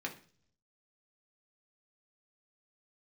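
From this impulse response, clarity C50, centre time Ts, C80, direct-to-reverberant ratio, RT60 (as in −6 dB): 12.0 dB, 12 ms, 17.5 dB, 0.0 dB, 0.45 s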